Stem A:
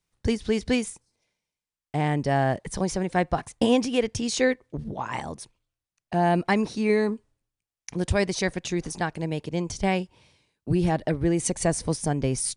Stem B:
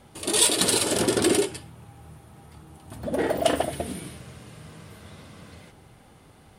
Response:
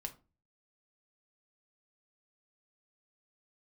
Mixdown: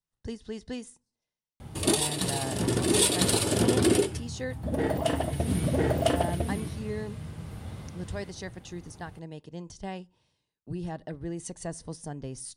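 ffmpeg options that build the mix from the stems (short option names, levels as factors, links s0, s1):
-filter_complex "[0:a]bandreject=f=2300:w=5.6,volume=0.2,asplit=3[s0][s1][s2];[s1]volume=0.266[s3];[1:a]equalizer=f=81:w=0.45:g=12.5,adelay=1600,volume=1.06,asplit=3[s4][s5][s6];[s5]volume=0.266[s7];[s6]volume=0.562[s8];[s2]apad=whole_len=361123[s9];[s4][s9]sidechaincompress=threshold=0.00224:ratio=8:attack=16:release=319[s10];[2:a]atrim=start_sample=2205[s11];[s3][s7]amix=inputs=2:normalize=0[s12];[s12][s11]afir=irnorm=-1:irlink=0[s13];[s8]aecho=0:1:1003:1[s14];[s0][s10][s13][s14]amix=inputs=4:normalize=0"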